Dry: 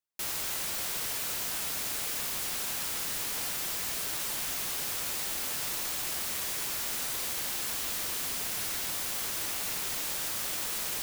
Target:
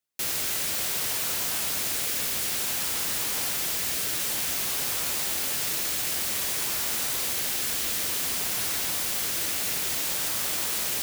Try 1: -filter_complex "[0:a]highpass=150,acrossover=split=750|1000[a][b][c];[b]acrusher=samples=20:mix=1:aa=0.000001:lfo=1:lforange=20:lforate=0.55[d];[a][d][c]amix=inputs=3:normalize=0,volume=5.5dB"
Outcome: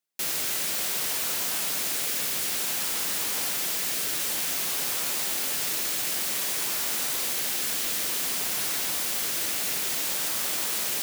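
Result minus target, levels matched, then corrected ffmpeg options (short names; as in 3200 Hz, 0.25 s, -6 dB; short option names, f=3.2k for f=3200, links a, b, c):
125 Hz band -4.5 dB
-filter_complex "[0:a]highpass=41,acrossover=split=750|1000[a][b][c];[b]acrusher=samples=20:mix=1:aa=0.000001:lfo=1:lforange=20:lforate=0.55[d];[a][d][c]amix=inputs=3:normalize=0,volume=5.5dB"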